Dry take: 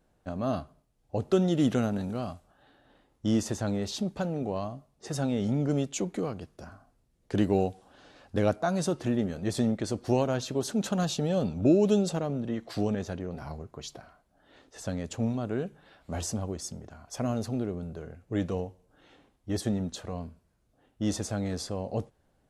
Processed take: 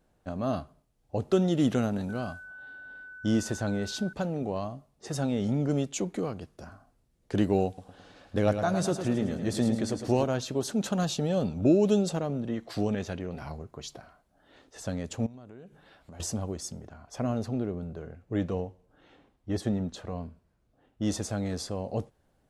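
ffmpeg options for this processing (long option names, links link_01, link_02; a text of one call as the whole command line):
ffmpeg -i in.wav -filter_complex "[0:a]asettb=1/sr,asplit=3[link_01][link_02][link_03];[link_01]atrim=end=2.094[link_04];[link_02]atrim=start=2.09:end=4.13,asetpts=PTS-STARTPTS,afade=type=in:duration=0.004:curve=qsin,afade=type=out:start_time=2.036:duration=0.004:curve=qsin,aeval=exprs='val(0)+0.00708*sin(2*PI*1500*n/s)':channel_layout=same[link_05];[link_03]atrim=start=4.126[link_06];[link_04][link_05]acrossfade=duration=0.004:curve1=hsin:curve2=qsin[link_07];[link_07][link_06]acrossfade=duration=0.004:curve1=qsin:curve2=hsin,asettb=1/sr,asplit=3[link_08][link_09][link_10];[link_08]atrim=end=7.674[link_11];[link_09]atrim=start=7.67:end=10.24,asetpts=PTS-STARTPTS,afade=type=in:duration=0.004:curve=qsin,afade=type=out:start_time=2.566:duration=0.004:curve=qsin,aecho=1:1:107|214|321|428|535|642:0.398|0.207|0.108|0.056|0.0291|0.0151,atrim=end_sample=113337[link_12];[link_10]atrim=start=10.236[link_13];[link_11][link_12]acrossfade=duration=0.004:curve1=hsin:curve2=qsin[link_14];[link_14][link_13]acrossfade=duration=0.004:curve1=qsin:curve2=hsin,asettb=1/sr,asplit=3[link_15][link_16][link_17];[link_15]atrim=end=12.924[link_18];[link_16]atrim=start=12.92:end=13.5,asetpts=PTS-STARTPTS,afade=type=in:duration=0.004:curve=qsin,afade=type=out:start_time=0.576:duration=0.004:curve=qsin,equalizer=frequency=2600:width_type=o:width=1.1:gain=6[link_19];[link_17]atrim=start=13.496[link_20];[link_18][link_19]acrossfade=duration=0.004:curve1=hsin:curve2=qsin[link_21];[link_21][link_20]acrossfade=duration=0.004:curve1=qsin:curve2=hsin,asettb=1/sr,asplit=3[link_22][link_23][link_24];[link_22]atrim=end=15.264[link_25];[link_23]atrim=start=15.26:end=16.2,asetpts=PTS-STARTPTS,afade=type=in:duration=0.004:curve=qsin,afade=type=out:start_time=0.936:duration=0.004:curve=qsin,acompressor=threshold=-45dB:ratio=5:attack=3.2:release=140:knee=1:detection=peak[link_26];[link_24]atrim=start=16.196[link_27];[link_25][link_26]acrossfade=duration=0.004:curve1=hsin:curve2=qsin[link_28];[link_28][link_27]acrossfade=duration=0.004:curve1=qsin:curve2=hsin,asettb=1/sr,asplit=3[link_29][link_30][link_31];[link_29]atrim=end=16.884[link_32];[link_30]atrim=start=16.88:end=21.02,asetpts=PTS-STARTPTS,afade=type=in:duration=0.004:curve=qsin,afade=type=out:start_time=4.136:duration=0.004:curve=qsin,aemphasis=mode=reproduction:type=cd[link_33];[link_31]atrim=start=21.016[link_34];[link_32][link_33]acrossfade=duration=0.004:curve1=hsin:curve2=qsin[link_35];[link_35][link_34]acrossfade=duration=0.004:curve1=qsin:curve2=hsin" out.wav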